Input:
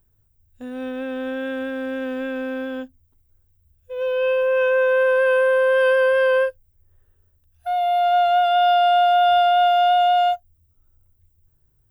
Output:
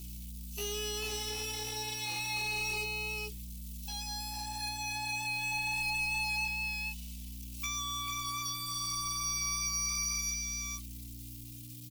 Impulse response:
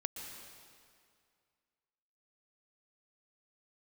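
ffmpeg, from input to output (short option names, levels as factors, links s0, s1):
-filter_complex "[0:a]acompressor=threshold=0.0794:ratio=5,equalizer=f=2800:t=o:w=0.35:g=-8.5,acrossover=split=260[s0][s1];[s1]acompressor=threshold=0.0141:ratio=8[s2];[s0][s2]amix=inputs=2:normalize=0,asetrate=72056,aresample=44100,atempo=0.612027,lowshelf=f=370:g=-9,asplit=2[s3][s4];[s4]aecho=0:1:441:0.422[s5];[s3][s5]amix=inputs=2:normalize=0,acrusher=bits=11:mix=0:aa=0.000001,aexciter=amount=13:drive=7.3:freq=2500,asoftclip=type=tanh:threshold=0.02,aeval=exprs='val(0)+0.00562*(sin(2*PI*60*n/s)+sin(2*PI*2*60*n/s)/2+sin(2*PI*3*60*n/s)/3+sin(2*PI*4*60*n/s)/4+sin(2*PI*5*60*n/s)/5)':c=same,asplit=2[s6][s7];[s7]adelay=2.7,afreqshift=0.31[s8];[s6][s8]amix=inputs=2:normalize=1,volume=1.5"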